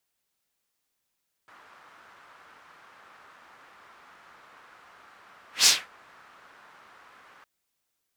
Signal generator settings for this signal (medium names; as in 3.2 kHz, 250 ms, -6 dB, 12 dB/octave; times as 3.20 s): whoosh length 5.96 s, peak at 4.18 s, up 0.15 s, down 0.24 s, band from 1.3 kHz, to 5.5 kHz, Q 1.9, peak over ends 37.5 dB